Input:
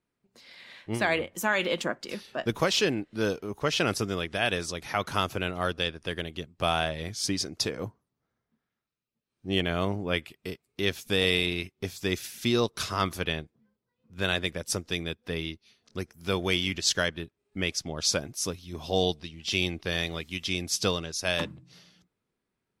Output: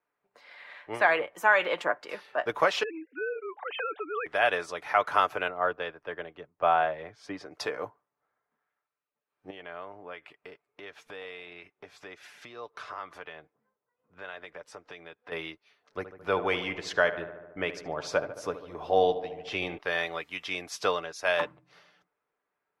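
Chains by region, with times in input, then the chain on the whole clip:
0:02.83–0:04.26: three sine waves on the formant tracks + volume swells 127 ms + downward compressor 12 to 1, threshold −30 dBFS
0:05.48–0:07.51: low-pass filter 1,300 Hz 6 dB per octave + multiband upward and downward expander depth 40%
0:09.50–0:15.32: high-frequency loss of the air 56 metres + downward compressor 4 to 1, threshold −40 dBFS + one half of a high-frequency compander decoder only
0:15.97–0:19.78: downward expander −48 dBFS + spectral tilt −2 dB per octave + feedback echo with a low-pass in the loop 73 ms, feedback 73%, low-pass 2,200 Hz, level −12 dB
whole clip: three-way crossover with the lows and the highs turned down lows −23 dB, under 500 Hz, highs −19 dB, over 2,100 Hz; comb filter 6.8 ms, depth 34%; level +6.5 dB

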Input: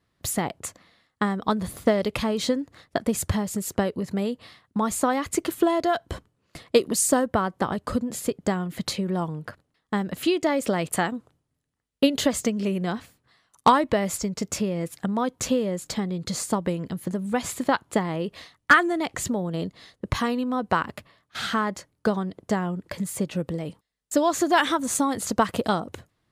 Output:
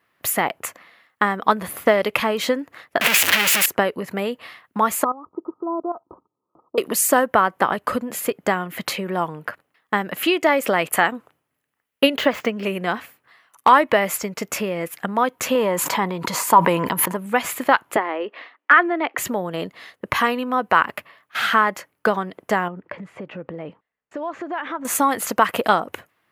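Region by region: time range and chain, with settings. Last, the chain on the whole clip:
0:03.01–0:03.66: sign of each sample alone + meter weighting curve D
0:05.04–0:06.78: Chebyshev low-pass with heavy ripple 1,300 Hz, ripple 9 dB + output level in coarse steps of 14 dB
0:12.16–0:12.63: running median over 5 samples + high-shelf EQ 6,700 Hz −11.5 dB
0:15.55–0:17.17: high-pass filter 56 Hz + parametric band 970 Hz +15 dB 0.32 octaves + level that may fall only so fast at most 23 dB per second
0:17.96–0:19.18: Butterworth high-pass 240 Hz 48 dB per octave + high-frequency loss of the air 310 metres
0:22.68–0:24.85: downward compressor 5 to 1, threshold −28 dBFS + head-to-tape spacing loss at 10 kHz 38 dB
whole clip: high-pass filter 1,100 Hz 6 dB per octave; flat-topped bell 5,800 Hz −11.5 dB; boost into a limiter +13.5 dB; level −1 dB

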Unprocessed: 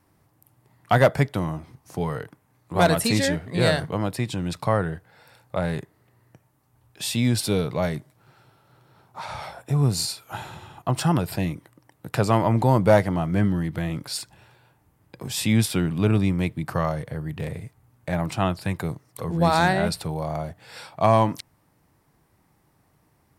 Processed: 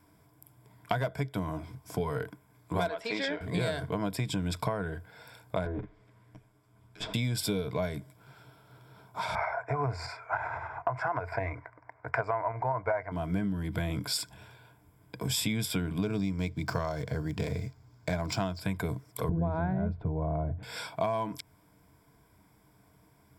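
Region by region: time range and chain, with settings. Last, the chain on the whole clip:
0:02.88–0:03.41: high-pass filter 490 Hz + high-frequency loss of the air 220 metres
0:05.65–0:07.14: lower of the sound and its delayed copy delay 9.5 ms + treble cut that deepens with the level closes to 990 Hz, closed at −27.5 dBFS + high-shelf EQ 10,000 Hz −11 dB
0:09.35–0:13.12: drawn EQ curve 120 Hz 0 dB, 170 Hz −21 dB, 310 Hz −7 dB, 710 Hz +10 dB, 2,100 Hz +5 dB, 3,200 Hz −21 dB, 4,900 Hz 0 dB + shaped tremolo saw up 9.8 Hz, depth 40% + low-pass with resonance 2,400 Hz, resonance Q 1.6
0:16.02–0:18.60: running median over 5 samples + flat-topped bell 5,500 Hz +10 dB 1 octave
0:19.29–0:20.63: low-pass filter 1,700 Hz + spectral tilt −4 dB per octave
whole clip: EQ curve with evenly spaced ripples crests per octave 1.7, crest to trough 10 dB; downward compressor 12 to 1, threshold −27 dBFS

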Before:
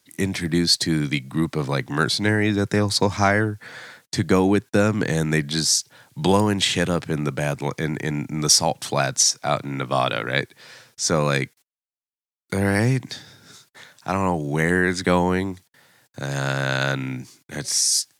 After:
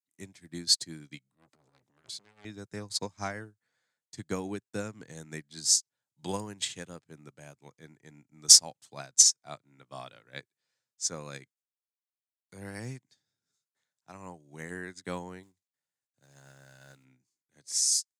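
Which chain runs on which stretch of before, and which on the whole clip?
0:01.27–0:02.45: low-shelf EQ 62 Hz −7 dB + transient designer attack −11 dB, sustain +7 dB + saturating transformer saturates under 2,300 Hz
0:15.43–0:17.05: variable-slope delta modulation 64 kbit/s + tube saturation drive 14 dB, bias 0.25 + floating-point word with a short mantissa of 2 bits
whole clip: parametric band 7,100 Hz +9.5 dB 1 octave; notch filter 5,700 Hz, Q 22; expander for the loud parts 2.5 to 1, over −32 dBFS; level −4 dB

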